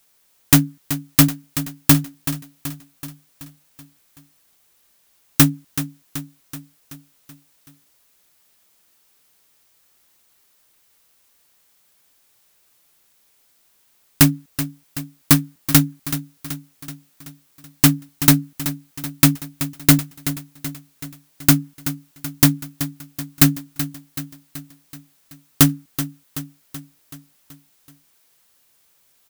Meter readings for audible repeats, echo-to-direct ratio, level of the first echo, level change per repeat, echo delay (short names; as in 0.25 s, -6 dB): 5, -10.5 dB, -12.0 dB, -5.0 dB, 0.379 s